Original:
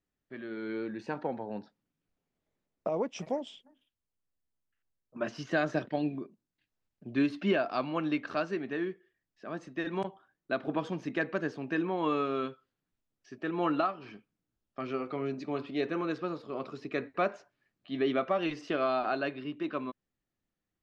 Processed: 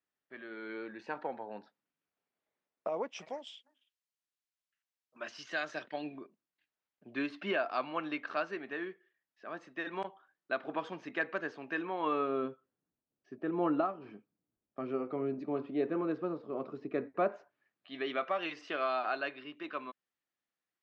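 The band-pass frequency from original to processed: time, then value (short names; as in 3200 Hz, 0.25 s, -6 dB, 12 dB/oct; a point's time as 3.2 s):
band-pass, Q 0.52
3.03 s 1500 Hz
3.47 s 3600 Hz
5.72 s 3600 Hz
6.13 s 1500 Hz
11.97 s 1500 Hz
12.46 s 390 Hz
17.14 s 390 Hz
17.95 s 1900 Hz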